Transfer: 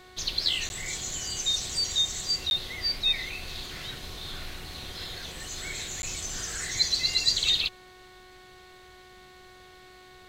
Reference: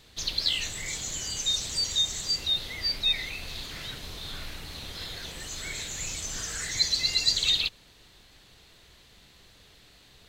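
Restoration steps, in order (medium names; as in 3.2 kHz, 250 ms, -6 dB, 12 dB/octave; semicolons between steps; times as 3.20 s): de-hum 368 Hz, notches 6; interpolate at 0.69/2.50/6.02 s, 11 ms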